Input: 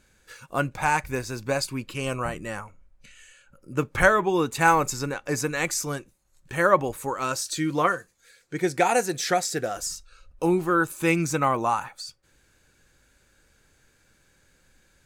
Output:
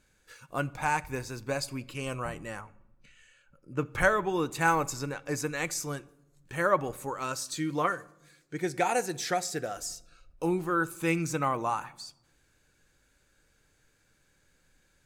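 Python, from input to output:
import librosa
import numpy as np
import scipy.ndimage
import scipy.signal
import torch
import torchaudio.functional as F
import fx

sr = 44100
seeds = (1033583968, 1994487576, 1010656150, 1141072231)

y = fx.lowpass(x, sr, hz=3500.0, slope=6, at=(2.61, 3.86))
y = fx.room_shoebox(y, sr, seeds[0], volume_m3=3500.0, walls='furnished', distance_m=0.43)
y = F.gain(torch.from_numpy(y), -6.0).numpy()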